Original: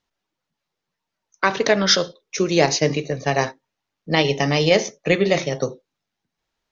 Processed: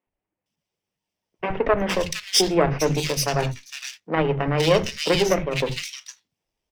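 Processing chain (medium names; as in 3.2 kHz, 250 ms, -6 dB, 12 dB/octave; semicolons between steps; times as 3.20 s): comb filter that takes the minimum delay 0.36 ms; three bands offset in time mids, lows, highs 70/460 ms, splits 200/2200 Hz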